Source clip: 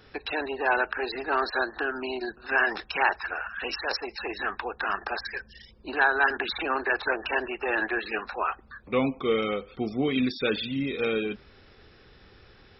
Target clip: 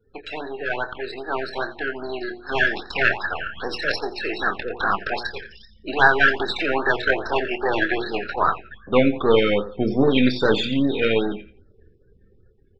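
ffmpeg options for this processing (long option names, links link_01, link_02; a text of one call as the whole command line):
ffmpeg -i in.wav -filter_complex "[0:a]aeval=exprs='if(lt(val(0),0),0.447*val(0),val(0))':channel_layout=same,afftdn=noise_reduction=35:noise_floor=-50,bandreject=frequency=60:width_type=h:width=6,bandreject=frequency=120:width_type=h:width=6,bandreject=frequency=180:width_type=h:width=6,bandreject=frequency=240:width_type=h:width=6,bandreject=frequency=300:width_type=h:width=6,bandreject=frequency=360:width_type=h:width=6,bandreject=frequency=420:width_type=h:width=6,bandreject=frequency=480:width_type=h:width=6,acrossover=split=4600[link_01][link_02];[link_02]acompressor=threshold=-53dB:ratio=4:attack=1:release=60[link_03];[link_01][link_03]amix=inputs=2:normalize=0,lowshelf=frequency=130:gain=-2.5,dynaudnorm=framelen=580:gausssize=9:maxgain=13.5dB,asplit=2[link_04][link_05];[link_05]adelay=25,volume=-10dB[link_06];[link_04][link_06]amix=inputs=2:normalize=0,asplit=2[link_07][link_08];[link_08]aecho=0:1:87|174|261:0.178|0.0445|0.0111[link_09];[link_07][link_09]amix=inputs=2:normalize=0,afftfilt=real='re*(1-between(b*sr/1024,890*pow(2700/890,0.5+0.5*sin(2*PI*2.5*pts/sr))/1.41,890*pow(2700/890,0.5+0.5*sin(2*PI*2.5*pts/sr))*1.41))':imag='im*(1-between(b*sr/1024,890*pow(2700/890,0.5+0.5*sin(2*PI*2.5*pts/sr))/1.41,890*pow(2700/890,0.5+0.5*sin(2*PI*2.5*pts/sr))*1.41))':win_size=1024:overlap=0.75,volume=2dB" out.wav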